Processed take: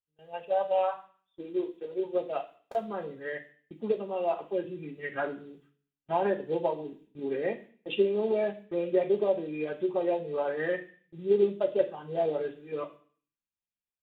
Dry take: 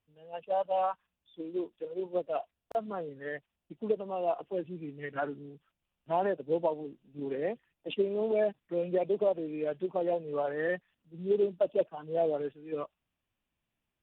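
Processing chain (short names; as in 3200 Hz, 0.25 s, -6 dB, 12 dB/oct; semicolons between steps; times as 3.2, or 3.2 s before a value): gate with hold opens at -48 dBFS; on a send: high shelf 2300 Hz +10.5 dB + reverb RT60 0.45 s, pre-delay 3 ms, DRR -2 dB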